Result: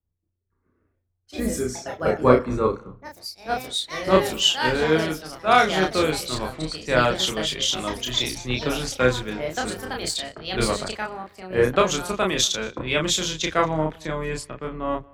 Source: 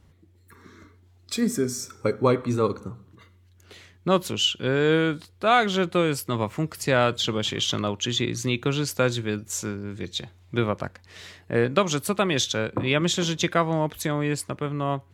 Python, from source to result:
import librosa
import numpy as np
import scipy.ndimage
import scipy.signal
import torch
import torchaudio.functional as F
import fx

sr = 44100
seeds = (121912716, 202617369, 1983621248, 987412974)

p1 = fx.octave_divider(x, sr, octaves=2, level_db=-4.0)
p2 = fx.low_shelf(p1, sr, hz=170.0, db=-9.5)
p3 = p2 + fx.echo_single(p2, sr, ms=232, db=-22.0, dry=0)
p4 = fx.env_lowpass(p3, sr, base_hz=940.0, full_db=-21.5)
p5 = fx.echo_pitch(p4, sr, ms=229, semitones=4, count=2, db_per_echo=-6.0)
p6 = fx.high_shelf(p5, sr, hz=12000.0, db=7.0)
p7 = fx.doubler(p6, sr, ms=32.0, db=-3)
p8 = fx.rider(p7, sr, range_db=4, speed_s=2.0)
p9 = p7 + (p8 * librosa.db_to_amplitude(-2.5))
p10 = fx.band_widen(p9, sr, depth_pct=70)
y = p10 * librosa.db_to_amplitude(-5.5)